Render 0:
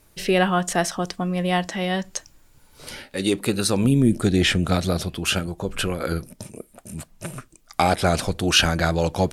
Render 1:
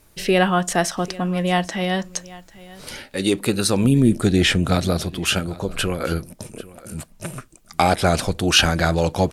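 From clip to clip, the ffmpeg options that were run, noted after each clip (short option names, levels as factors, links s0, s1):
-af "aecho=1:1:793:0.1,volume=1.26"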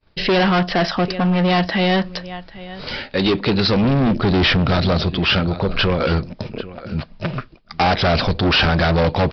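-af "equalizer=f=320:w=5.4:g=-4,aresample=11025,volume=12.6,asoftclip=hard,volume=0.0794,aresample=44100,agate=range=0.0224:threshold=0.00501:ratio=3:detection=peak,volume=2.66"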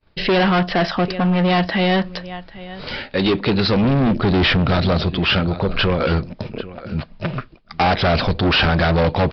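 -af "lowpass=4700"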